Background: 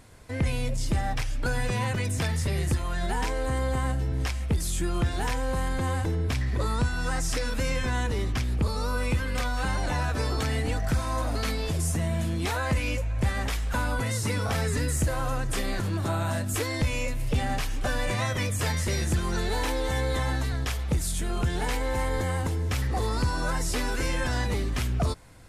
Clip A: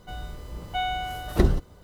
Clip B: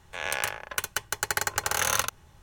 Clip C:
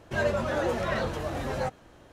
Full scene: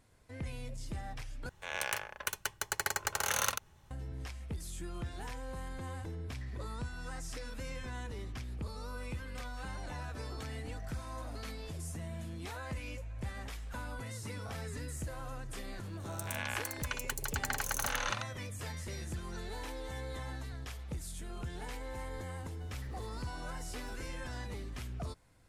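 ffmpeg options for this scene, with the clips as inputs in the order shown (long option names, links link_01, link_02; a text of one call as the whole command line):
ffmpeg -i bed.wav -i cue0.wav -i cue1.wav -filter_complex "[2:a]asplit=2[link_01][link_02];[0:a]volume=-14.5dB[link_03];[link_02]acrossover=split=480|5600[link_04][link_05][link_06];[link_06]adelay=60[link_07];[link_05]adelay=320[link_08];[link_04][link_08][link_07]amix=inputs=3:normalize=0[link_09];[1:a]acompressor=threshold=-34dB:ratio=6:attack=3.2:release=140:knee=1:detection=peak[link_10];[link_03]asplit=2[link_11][link_12];[link_11]atrim=end=1.494[link_13];[link_01]atrim=end=2.42,asetpts=PTS-STARTPTS,volume=-6.5dB[link_14];[link_12]atrim=start=3.906[link_15];[link_09]atrim=end=2.42,asetpts=PTS-STARTPTS,volume=-7.5dB,afade=type=in:duration=0.004:curve=hsin,afade=type=out:start_time=2.416:duration=0.004:curve=hsin,adelay=15810[link_16];[link_10]atrim=end=1.83,asetpts=PTS-STARTPTS,volume=-17dB,afade=type=in:duration=0.004:curve=hsin,afade=type=out:start_time=1.826:duration=0.004:curve=hsin,adelay=22530[link_17];[link_13][link_14]acrossfade=duration=0.004:curve1=hsin:curve2=hsin[link_18];[link_18][link_15]acrossfade=duration=0.004:curve1=hsin:curve2=hsin[link_19];[link_19][link_16][link_17]amix=inputs=3:normalize=0" out.wav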